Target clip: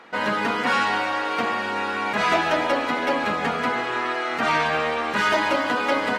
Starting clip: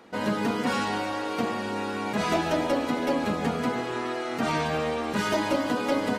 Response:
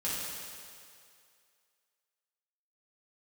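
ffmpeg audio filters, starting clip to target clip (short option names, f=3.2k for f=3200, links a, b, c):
-af "equalizer=f=1.7k:w=0.36:g=15,volume=-5dB"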